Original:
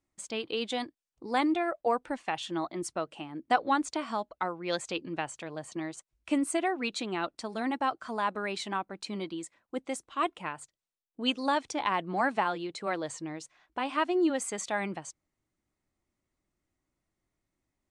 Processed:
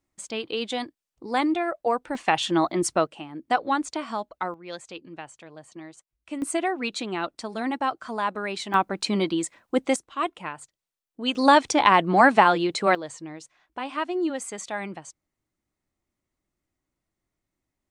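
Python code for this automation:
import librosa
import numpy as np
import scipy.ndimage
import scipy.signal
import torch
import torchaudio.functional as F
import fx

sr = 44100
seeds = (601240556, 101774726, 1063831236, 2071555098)

y = fx.gain(x, sr, db=fx.steps((0.0, 3.5), (2.15, 11.0), (3.07, 2.5), (4.54, -5.5), (6.42, 3.5), (8.74, 12.0), (9.96, 2.5), (11.35, 12.0), (12.95, 0.0)))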